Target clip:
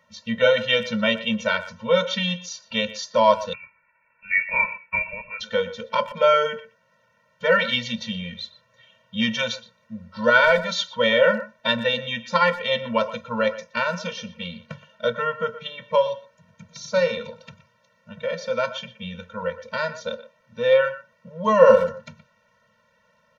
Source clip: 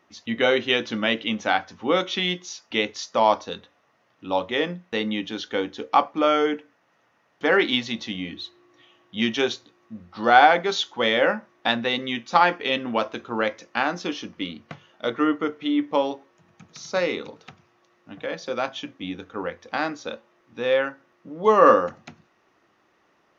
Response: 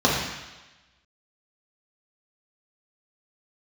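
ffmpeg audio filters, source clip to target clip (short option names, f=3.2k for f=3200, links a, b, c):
-filter_complex "[0:a]asplit=2[a][b];[b]adelay=120,highpass=300,lowpass=3.4k,asoftclip=type=hard:threshold=-10.5dB,volume=-14dB[c];[a][c]amix=inputs=2:normalize=0,asettb=1/sr,asplit=3[d][e][f];[d]atrim=end=3.534[g];[e]atrim=start=3.53:end=5.41,asetpts=PTS-STARTPTS,afade=t=in:d=0.004:c=qsin,afade=t=out:st=1.876:d=0.004:c=qsin,lowpass=f=2.4k:t=q:w=0.5098,lowpass=f=2.4k:t=q:w=0.6013,lowpass=f=2.4k:t=q:w=0.9,lowpass=f=2.4k:t=q:w=2.563,afreqshift=-2800[h];[f]atrim=start=5.406[i];[g][h]acrossfade=d=0.004:c1=hsin:c2=qsin[j];[j][i]acrossfade=d=0.004:c1=qsin:c2=hsin,afftfilt=real='re*eq(mod(floor(b*sr/1024/220),2),0)':imag='im*eq(mod(floor(b*sr/1024/220),2),0)':win_size=1024:overlap=0.75,volume=4.5dB"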